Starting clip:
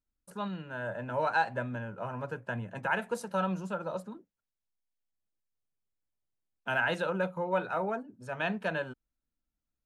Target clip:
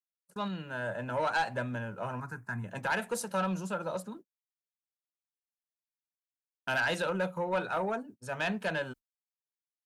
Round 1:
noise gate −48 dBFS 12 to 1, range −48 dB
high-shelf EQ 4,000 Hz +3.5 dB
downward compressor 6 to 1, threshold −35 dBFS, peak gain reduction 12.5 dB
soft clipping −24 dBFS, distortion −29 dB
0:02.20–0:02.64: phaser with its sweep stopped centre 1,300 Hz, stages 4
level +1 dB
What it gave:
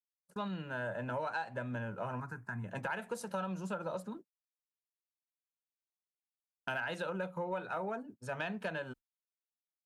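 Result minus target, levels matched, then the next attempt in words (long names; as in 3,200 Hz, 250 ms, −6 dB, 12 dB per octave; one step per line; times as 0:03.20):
downward compressor: peak gain reduction +12.5 dB; 8,000 Hz band −4.5 dB
noise gate −48 dBFS 12 to 1, range −48 dB
high-shelf EQ 4,000 Hz +10 dB
soft clipping −24 dBFS, distortion −14 dB
0:02.20–0:02.64: phaser with its sweep stopped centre 1,300 Hz, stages 4
level +1 dB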